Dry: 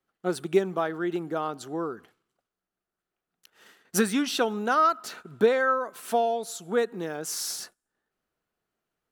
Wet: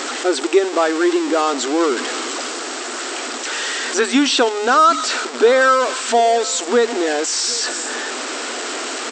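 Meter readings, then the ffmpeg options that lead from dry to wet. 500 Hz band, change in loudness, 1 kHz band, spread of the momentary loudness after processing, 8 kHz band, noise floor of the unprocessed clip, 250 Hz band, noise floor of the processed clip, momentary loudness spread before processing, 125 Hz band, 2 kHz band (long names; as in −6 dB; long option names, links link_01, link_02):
+10.5 dB, +9.5 dB, +11.0 dB, 11 LU, +14.5 dB, below −85 dBFS, +10.0 dB, −27 dBFS, 11 LU, below −10 dB, +13.0 dB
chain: -filter_complex "[0:a]aeval=exprs='val(0)+0.5*0.0355*sgn(val(0))':channel_layout=same,acrossover=split=3800[link_01][link_02];[link_02]acompressor=threshold=-36dB:ratio=4:attack=1:release=60[link_03];[link_01][link_03]amix=inputs=2:normalize=0,aemphasis=mode=production:type=50kf,bandreject=frequency=6300:width=21,asplit=2[link_04][link_05];[link_05]alimiter=limit=-20dB:level=0:latency=1:release=210,volume=2dB[link_06];[link_04][link_06]amix=inputs=2:normalize=0,asplit=2[link_07][link_08];[link_08]adelay=758,volume=-19dB,highshelf=frequency=4000:gain=-17.1[link_09];[link_07][link_09]amix=inputs=2:normalize=0,afftfilt=real='re*between(b*sr/4096,230,8300)':imag='im*between(b*sr/4096,230,8300)':win_size=4096:overlap=0.75,volume=4dB"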